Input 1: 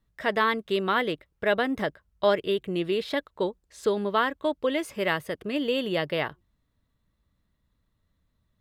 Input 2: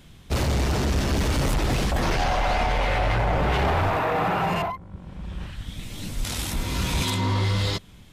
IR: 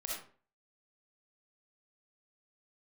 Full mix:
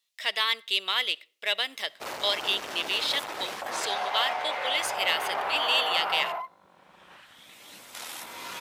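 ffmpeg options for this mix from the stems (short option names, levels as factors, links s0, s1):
-filter_complex "[0:a]lowpass=f=3400:p=1,aexciter=amount=4.9:drive=9.3:freq=2300,volume=0.531,asplit=2[s0][s1];[s1]volume=0.0668[s2];[1:a]equalizer=f=5900:w=0.31:g=-8.5,adelay=1700,volume=0.891,asplit=2[s3][s4];[s4]volume=0.075[s5];[2:a]atrim=start_sample=2205[s6];[s2][s5]amix=inputs=2:normalize=0[s7];[s7][s6]afir=irnorm=-1:irlink=0[s8];[s0][s3][s8]amix=inputs=3:normalize=0,highpass=800"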